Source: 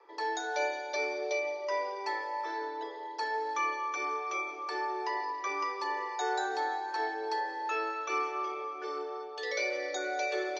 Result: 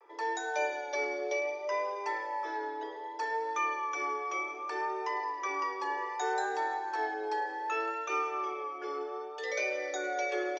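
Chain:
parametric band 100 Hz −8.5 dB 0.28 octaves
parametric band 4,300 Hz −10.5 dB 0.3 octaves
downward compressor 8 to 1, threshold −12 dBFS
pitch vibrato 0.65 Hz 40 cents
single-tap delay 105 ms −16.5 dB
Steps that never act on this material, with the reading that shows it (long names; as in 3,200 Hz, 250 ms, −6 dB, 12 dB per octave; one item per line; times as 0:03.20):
parametric band 100 Hz: nothing at its input below 270 Hz
downward compressor, threshold −12 dBFS: peak of its input −20.0 dBFS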